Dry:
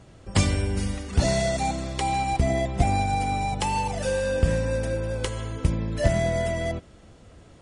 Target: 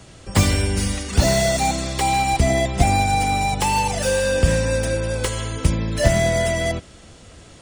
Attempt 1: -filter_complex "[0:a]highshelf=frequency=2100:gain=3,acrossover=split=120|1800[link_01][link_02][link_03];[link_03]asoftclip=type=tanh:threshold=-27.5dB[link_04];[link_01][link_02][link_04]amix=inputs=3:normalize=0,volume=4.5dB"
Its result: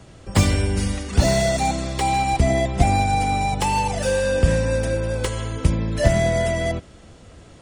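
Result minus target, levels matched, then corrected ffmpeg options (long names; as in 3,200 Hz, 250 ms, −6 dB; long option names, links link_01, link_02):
4,000 Hz band −2.5 dB
-filter_complex "[0:a]highshelf=frequency=2100:gain=10.5,acrossover=split=120|1800[link_01][link_02][link_03];[link_03]asoftclip=type=tanh:threshold=-27.5dB[link_04];[link_01][link_02][link_04]amix=inputs=3:normalize=0,volume=4.5dB"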